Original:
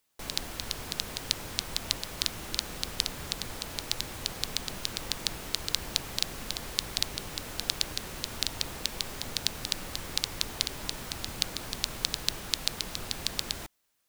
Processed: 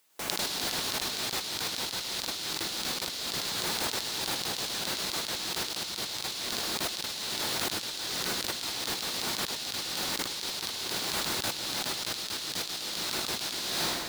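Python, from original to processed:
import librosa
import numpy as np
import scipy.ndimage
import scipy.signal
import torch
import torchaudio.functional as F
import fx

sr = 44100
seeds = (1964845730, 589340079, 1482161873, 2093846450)

y = fx.highpass(x, sr, hz=330.0, slope=6)
y = fx.rev_plate(y, sr, seeds[0], rt60_s=2.3, hf_ratio=0.65, predelay_ms=90, drr_db=-6.0)
y = fx.over_compress(y, sr, threshold_db=-36.0, ratio=-1.0)
y = F.gain(torch.from_numpy(y), 2.0).numpy()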